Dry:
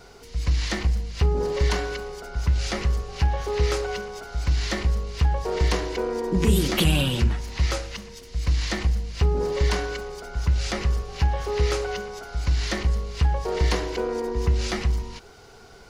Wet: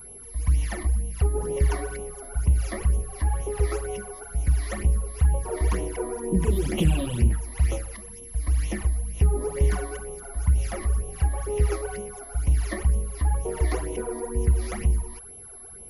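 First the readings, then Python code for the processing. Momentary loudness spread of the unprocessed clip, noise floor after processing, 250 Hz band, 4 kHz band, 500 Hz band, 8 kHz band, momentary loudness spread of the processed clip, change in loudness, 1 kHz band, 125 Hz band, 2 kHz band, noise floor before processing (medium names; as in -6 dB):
9 LU, -43 dBFS, -2.5 dB, -13.5 dB, -3.5 dB, +0.5 dB, 10 LU, -1.0 dB, -5.0 dB, 0.0 dB, -7.5 dB, -47 dBFS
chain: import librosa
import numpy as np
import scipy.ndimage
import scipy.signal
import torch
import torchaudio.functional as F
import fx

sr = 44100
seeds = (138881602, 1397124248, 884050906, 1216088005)

y = fx.high_shelf(x, sr, hz=2700.0, db=-8.5)
y = fx.phaser_stages(y, sr, stages=12, low_hz=140.0, high_hz=1600.0, hz=2.1, feedback_pct=25)
y = y + 10.0 ** (-41.0 / 20.0) * np.sin(2.0 * np.pi * 11000.0 * np.arange(len(y)) / sr)
y = fx.peak_eq(y, sr, hz=4000.0, db=-8.5, octaves=0.91)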